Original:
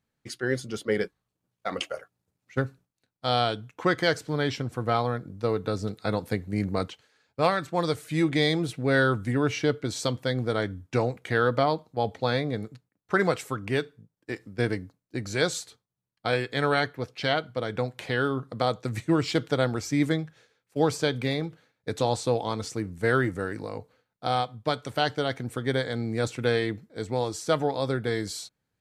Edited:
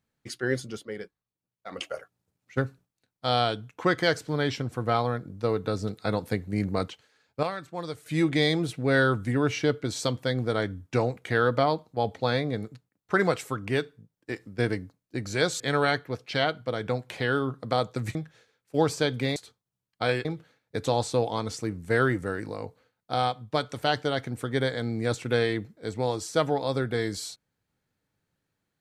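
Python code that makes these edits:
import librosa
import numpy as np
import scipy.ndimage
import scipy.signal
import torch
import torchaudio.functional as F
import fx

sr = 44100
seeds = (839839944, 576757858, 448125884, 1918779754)

y = fx.edit(x, sr, fx.fade_down_up(start_s=0.6, length_s=1.36, db=-11.0, fade_s=0.3),
    fx.clip_gain(start_s=7.43, length_s=0.63, db=-8.5),
    fx.move(start_s=15.6, length_s=0.89, to_s=21.38),
    fx.cut(start_s=19.04, length_s=1.13), tone=tone)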